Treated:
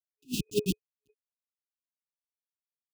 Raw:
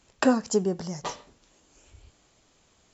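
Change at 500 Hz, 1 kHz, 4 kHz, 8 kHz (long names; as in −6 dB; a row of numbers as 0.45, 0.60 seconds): −8.0 dB, below −40 dB, −1.5 dB, can't be measured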